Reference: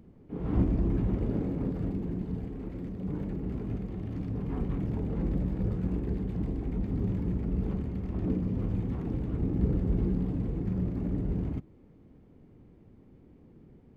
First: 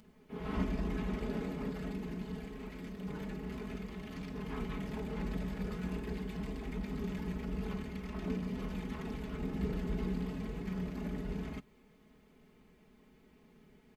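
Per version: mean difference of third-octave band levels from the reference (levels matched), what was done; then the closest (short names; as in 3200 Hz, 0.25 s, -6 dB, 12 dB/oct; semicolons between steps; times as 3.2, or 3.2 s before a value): 9.5 dB: tilt shelf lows -10 dB, about 870 Hz; comb 4.7 ms, depth 84%; gain -1.5 dB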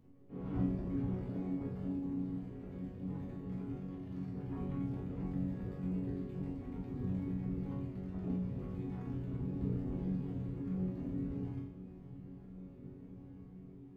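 2.5 dB: reverb removal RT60 0.56 s; resonator bank F#2 sus4, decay 0.68 s; on a send: diffused feedback echo 1.907 s, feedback 52%, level -13 dB; on the sum: gain +10.5 dB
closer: second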